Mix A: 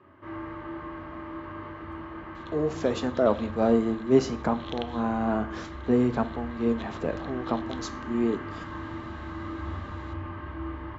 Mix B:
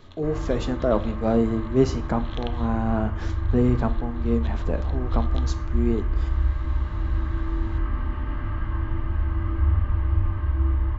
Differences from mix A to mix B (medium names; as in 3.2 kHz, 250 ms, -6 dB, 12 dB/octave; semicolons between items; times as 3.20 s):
speech: entry -2.35 s; master: remove high-pass 190 Hz 12 dB/octave